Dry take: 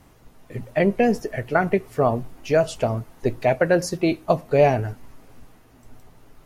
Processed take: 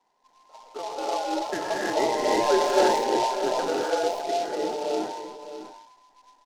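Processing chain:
frequency inversion band by band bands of 1,000 Hz
source passing by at 0:02.51, 6 m/s, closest 2.6 metres
three-way crossover with the lows and the highs turned down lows −12 dB, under 210 Hz, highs −16 dB, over 2,400 Hz
on a send: single-tap delay 609 ms −11.5 dB
on the sum: reverb whose tail is shaped and stops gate 370 ms rising, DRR −5 dB
transient designer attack 0 dB, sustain +5 dB
short delay modulated by noise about 3,900 Hz, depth 0.045 ms
level −3.5 dB

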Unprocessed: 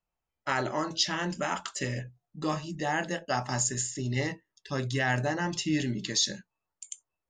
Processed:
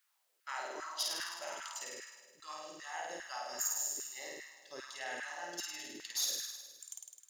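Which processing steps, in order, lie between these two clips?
stylus tracing distortion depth 0.02 ms
first-order pre-emphasis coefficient 0.8
flutter between parallel walls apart 8.9 metres, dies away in 1.3 s
bit-depth reduction 12 bits, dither triangular
auto-filter high-pass saw down 2.5 Hz 370–1,600 Hz
level −6.5 dB

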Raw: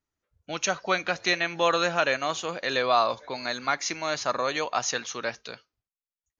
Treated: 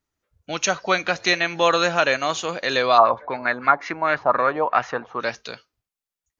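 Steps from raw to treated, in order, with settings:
0:02.97–0:05.19: auto-filter low-pass sine 9.2 Hz → 1.6 Hz 800–2,000 Hz
level +5 dB

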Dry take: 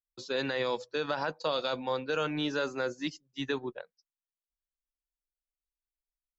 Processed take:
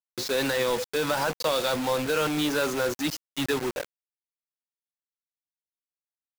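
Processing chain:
converter with a step at zero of −33.5 dBFS
bit-depth reduction 6 bits, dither none
level +3 dB

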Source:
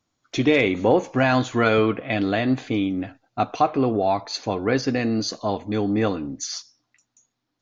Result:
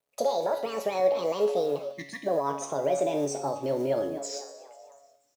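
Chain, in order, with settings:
gliding playback speed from 187% → 97%
on a send: echo with shifted repeats 243 ms, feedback 52%, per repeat +84 Hz, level −19.5 dB
on the sum: gain on a spectral selection 0:01.92–0:02.27, 360–1,700 Hz −30 dB
high-pass filter 78 Hz 12 dB per octave
brickwall limiter −18 dBFS, peak gain reduction 11.5 dB
dynamic equaliser 1,300 Hz, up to −4 dB, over −41 dBFS, Q 0.85
log-companded quantiser 6 bits
parametric band 600 Hz +14.5 dB 0.92 octaves
tuned comb filter 140 Hz, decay 0.66 s, harmonics all, mix 80%
level +3.5 dB

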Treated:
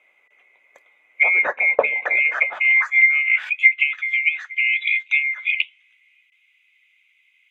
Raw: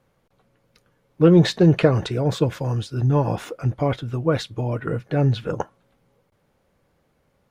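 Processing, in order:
neighbouring bands swapped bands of 2,000 Hz
treble cut that deepens with the level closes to 1,200 Hz, closed at −15.5 dBFS
high shelf with overshoot 2,500 Hz −11.5 dB, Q 1.5
high-pass filter sweep 520 Hz → 3,000 Hz, 0:02.20–0:03.84
level +8 dB

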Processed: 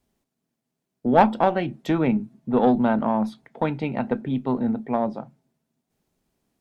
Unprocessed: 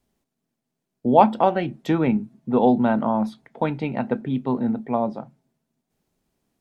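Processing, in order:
one-sided soft clipper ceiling −10 dBFS

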